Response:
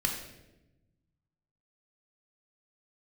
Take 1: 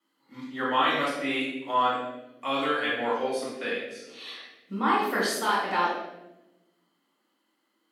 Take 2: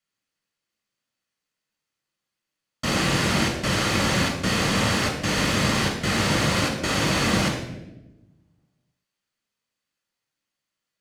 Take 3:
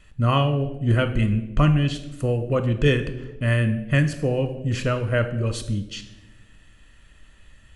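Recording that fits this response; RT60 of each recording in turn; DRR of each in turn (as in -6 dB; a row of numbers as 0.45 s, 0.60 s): 2; 0.95 s, 0.95 s, 1.0 s; -6.5 dB, 1.5 dB, 9.0 dB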